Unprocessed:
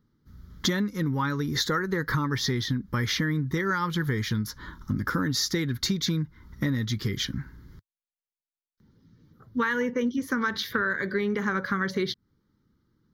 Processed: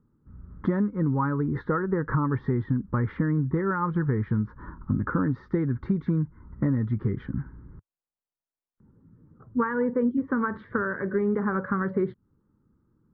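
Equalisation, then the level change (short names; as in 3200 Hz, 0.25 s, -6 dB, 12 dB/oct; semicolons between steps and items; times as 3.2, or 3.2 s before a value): LPF 1300 Hz 24 dB/oct; +2.5 dB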